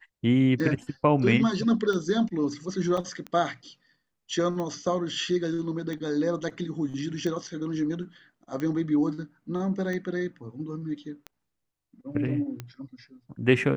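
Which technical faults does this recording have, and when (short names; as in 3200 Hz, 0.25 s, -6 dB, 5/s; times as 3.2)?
tick 45 rpm -21 dBFS
2.97 gap 4.9 ms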